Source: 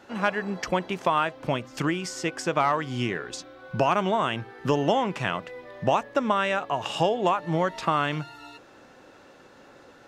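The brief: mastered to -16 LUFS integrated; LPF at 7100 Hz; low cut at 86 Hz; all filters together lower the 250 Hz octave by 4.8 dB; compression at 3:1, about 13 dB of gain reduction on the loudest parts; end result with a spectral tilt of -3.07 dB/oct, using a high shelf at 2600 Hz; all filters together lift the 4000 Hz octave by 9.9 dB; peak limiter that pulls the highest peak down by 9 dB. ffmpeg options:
-af "highpass=86,lowpass=7.1k,equalizer=f=250:t=o:g=-7,highshelf=f=2.6k:g=8,equalizer=f=4k:t=o:g=7.5,acompressor=threshold=-35dB:ratio=3,volume=22dB,alimiter=limit=-3.5dB:level=0:latency=1"

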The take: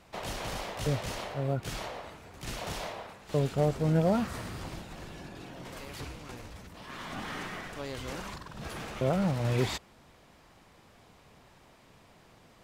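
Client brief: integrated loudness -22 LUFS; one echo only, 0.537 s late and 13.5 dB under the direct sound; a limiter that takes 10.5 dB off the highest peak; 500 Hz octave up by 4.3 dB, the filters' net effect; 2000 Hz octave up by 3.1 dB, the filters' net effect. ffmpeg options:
-af "equalizer=f=500:t=o:g=5,equalizer=f=2k:t=o:g=3.5,alimiter=limit=-23.5dB:level=0:latency=1,aecho=1:1:537:0.211,volume=14dB"

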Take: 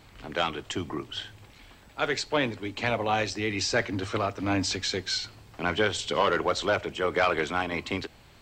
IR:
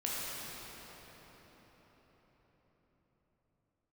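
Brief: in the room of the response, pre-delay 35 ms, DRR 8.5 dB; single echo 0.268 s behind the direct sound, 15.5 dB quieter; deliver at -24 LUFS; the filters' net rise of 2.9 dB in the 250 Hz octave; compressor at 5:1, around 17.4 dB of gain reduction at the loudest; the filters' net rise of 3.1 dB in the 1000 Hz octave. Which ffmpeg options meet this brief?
-filter_complex "[0:a]equalizer=f=250:t=o:g=3.5,equalizer=f=1k:t=o:g=4,acompressor=threshold=-38dB:ratio=5,aecho=1:1:268:0.168,asplit=2[a][b];[1:a]atrim=start_sample=2205,adelay=35[c];[b][c]afir=irnorm=-1:irlink=0,volume=-14dB[d];[a][d]amix=inputs=2:normalize=0,volume=16dB"

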